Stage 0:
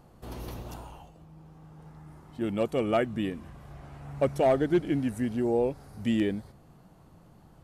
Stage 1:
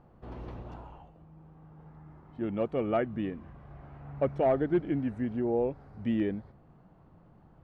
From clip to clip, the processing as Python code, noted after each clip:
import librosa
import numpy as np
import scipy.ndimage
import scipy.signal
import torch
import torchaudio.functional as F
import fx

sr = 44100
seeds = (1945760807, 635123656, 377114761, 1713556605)

y = scipy.signal.sosfilt(scipy.signal.butter(2, 2000.0, 'lowpass', fs=sr, output='sos'), x)
y = y * 10.0 ** (-2.5 / 20.0)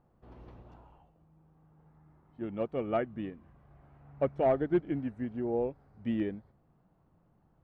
y = fx.upward_expand(x, sr, threshold_db=-42.0, expansion=1.5)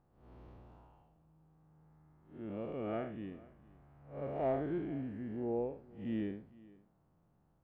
y = fx.spec_blur(x, sr, span_ms=153.0)
y = y + 10.0 ** (-22.0 / 20.0) * np.pad(y, (int(459 * sr / 1000.0), 0))[:len(y)]
y = y * 10.0 ** (-3.0 / 20.0)